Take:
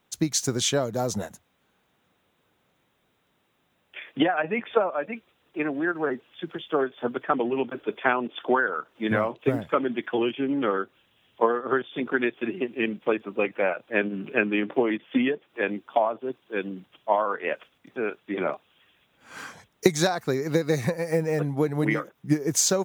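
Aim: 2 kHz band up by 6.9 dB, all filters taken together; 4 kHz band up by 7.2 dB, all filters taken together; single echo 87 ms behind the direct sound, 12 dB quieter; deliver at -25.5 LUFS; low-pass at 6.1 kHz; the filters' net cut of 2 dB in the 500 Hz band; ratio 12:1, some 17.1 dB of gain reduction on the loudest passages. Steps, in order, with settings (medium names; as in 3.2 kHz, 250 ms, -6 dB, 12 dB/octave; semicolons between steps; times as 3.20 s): low-pass 6.1 kHz; peaking EQ 500 Hz -3 dB; peaking EQ 2 kHz +7.5 dB; peaking EQ 4 kHz +7.5 dB; compression 12:1, threshold -30 dBFS; delay 87 ms -12 dB; trim +9.5 dB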